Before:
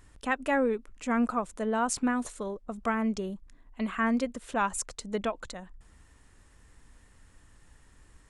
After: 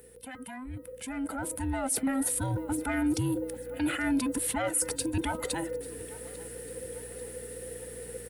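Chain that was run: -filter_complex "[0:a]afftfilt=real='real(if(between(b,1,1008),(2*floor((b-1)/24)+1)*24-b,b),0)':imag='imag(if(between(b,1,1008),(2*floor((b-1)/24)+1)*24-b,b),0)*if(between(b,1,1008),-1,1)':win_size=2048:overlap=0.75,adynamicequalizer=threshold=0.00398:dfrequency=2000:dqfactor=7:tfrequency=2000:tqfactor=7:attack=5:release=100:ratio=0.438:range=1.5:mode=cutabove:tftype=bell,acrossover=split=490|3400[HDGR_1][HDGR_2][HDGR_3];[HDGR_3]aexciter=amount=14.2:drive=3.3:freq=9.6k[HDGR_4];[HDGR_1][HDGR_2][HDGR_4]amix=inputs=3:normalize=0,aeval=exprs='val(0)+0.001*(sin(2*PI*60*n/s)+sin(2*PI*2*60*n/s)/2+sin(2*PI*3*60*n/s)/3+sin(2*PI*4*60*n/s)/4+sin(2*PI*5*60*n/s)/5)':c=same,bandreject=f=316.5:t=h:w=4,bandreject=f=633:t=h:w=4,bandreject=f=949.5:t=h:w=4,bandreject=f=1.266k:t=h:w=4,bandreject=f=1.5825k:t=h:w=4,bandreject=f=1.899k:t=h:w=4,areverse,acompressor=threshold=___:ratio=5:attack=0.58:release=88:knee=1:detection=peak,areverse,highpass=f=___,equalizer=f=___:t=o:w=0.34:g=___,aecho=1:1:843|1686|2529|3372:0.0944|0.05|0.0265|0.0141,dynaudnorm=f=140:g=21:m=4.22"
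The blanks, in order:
0.0141, 56, 1.1k, -14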